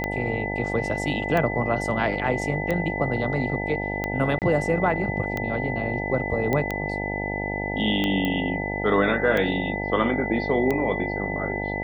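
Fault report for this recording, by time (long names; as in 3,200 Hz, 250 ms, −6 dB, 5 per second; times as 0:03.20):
mains buzz 50 Hz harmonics 18 −30 dBFS
scratch tick 45 rpm −13 dBFS
whistle 2,000 Hz −30 dBFS
0:04.39–0:04.42: drop-out 28 ms
0:06.53: click −12 dBFS
0:08.25: click −14 dBFS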